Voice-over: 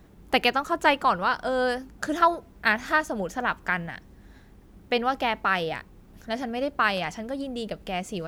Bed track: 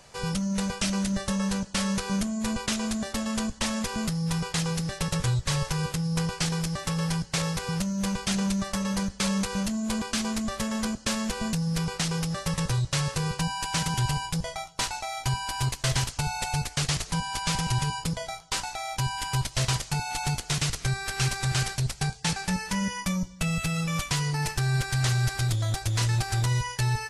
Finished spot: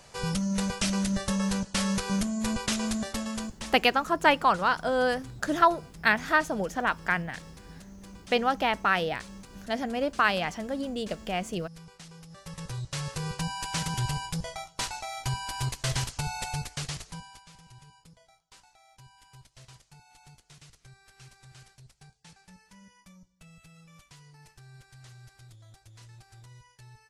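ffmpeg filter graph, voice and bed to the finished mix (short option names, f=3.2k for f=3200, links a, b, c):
-filter_complex "[0:a]adelay=3400,volume=-0.5dB[a];[1:a]volume=16dB,afade=t=out:st=2.96:d=0.88:silence=0.105925,afade=t=in:st=12.27:d=1.21:silence=0.149624,afade=t=out:st=16.38:d=1.08:silence=0.0749894[b];[a][b]amix=inputs=2:normalize=0"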